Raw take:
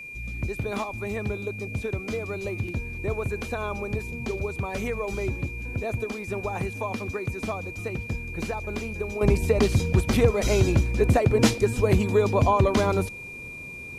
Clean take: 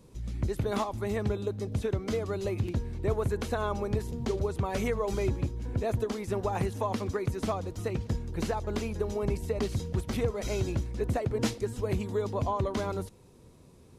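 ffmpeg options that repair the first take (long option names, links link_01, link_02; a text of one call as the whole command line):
ffmpeg -i in.wav -af "bandreject=frequency=2400:width=30,agate=range=-21dB:threshold=-29dB,asetnsamples=nb_out_samples=441:pad=0,asendcmd='9.21 volume volume -9.5dB',volume=0dB" out.wav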